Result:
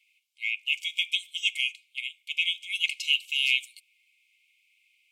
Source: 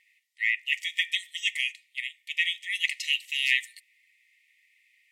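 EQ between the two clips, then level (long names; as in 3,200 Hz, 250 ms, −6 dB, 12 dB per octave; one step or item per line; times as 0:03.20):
linear-phase brick-wall high-pass 2,100 Hz
parametric band 3,000 Hz +5 dB 0.31 octaves
−1.0 dB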